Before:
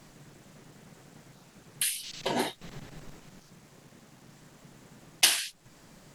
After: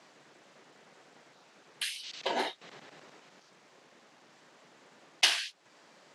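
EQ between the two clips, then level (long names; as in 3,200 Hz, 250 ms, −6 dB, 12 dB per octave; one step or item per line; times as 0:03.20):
band-pass filter 430–5,100 Hz
0.0 dB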